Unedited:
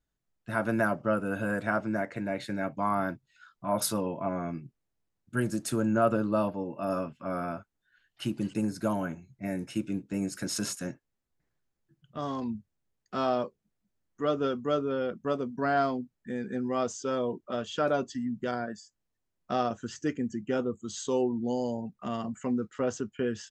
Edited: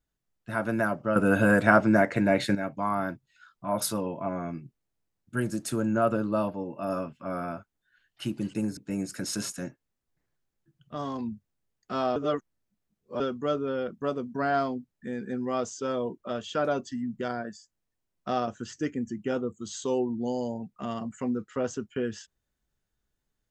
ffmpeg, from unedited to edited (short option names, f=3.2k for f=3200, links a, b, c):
-filter_complex "[0:a]asplit=6[a][b][c][d][e][f];[a]atrim=end=1.162[g];[b]atrim=start=1.158:end=2.552,asetpts=PTS-STARTPTS,volume=9.5dB[h];[c]atrim=start=2.548:end=8.772[i];[d]atrim=start=9.998:end=13.392[j];[e]atrim=start=13.388:end=14.432,asetpts=PTS-STARTPTS,areverse[k];[f]atrim=start=14.428[l];[g][h]acrossfade=d=0.004:c1=hsin:c2=hsin[m];[m][i]acrossfade=d=0.004:c1=hsin:c2=hsin[n];[n][j]acrossfade=d=0.004:c1=hsin:c2=hsin[o];[o][k]acrossfade=d=0.004:c1=hsin:c2=hsin[p];[p][l]acrossfade=d=0.004:c1=hsin:c2=hsin"